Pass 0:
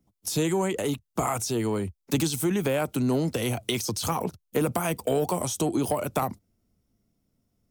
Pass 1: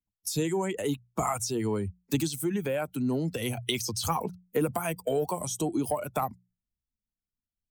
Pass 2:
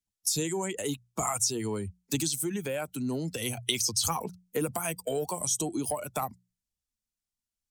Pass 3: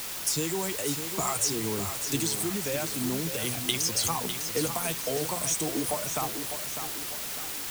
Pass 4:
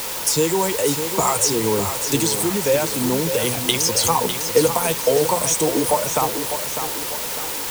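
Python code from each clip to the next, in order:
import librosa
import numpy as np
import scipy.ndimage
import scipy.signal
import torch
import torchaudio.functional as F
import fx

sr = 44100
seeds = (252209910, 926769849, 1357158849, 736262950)

y1 = fx.bin_expand(x, sr, power=1.5)
y1 = fx.hum_notches(y1, sr, base_hz=60, count=3)
y1 = fx.rider(y1, sr, range_db=10, speed_s=0.5)
y2 = fx.peak_eq(y1, sr, hz=7200.0, db=10.5, octaves=2.1)
y2 = y2 * librosa.db_to_amplitude(-3.5)
y3 = fx.quant_dither(y2, sr, seeds[0], bits=6, dither='triangular')
y3 = fx.echo_feedback(y3, sr, ms=602, feedback_pct=46, wet_db=-8.5)
y4 = fx.small_body(y3, sr, hz=(500.0, 910.0), ring_ms=25, db=10)
y4 = y4 * librosa.db_to_amplitude(8.0)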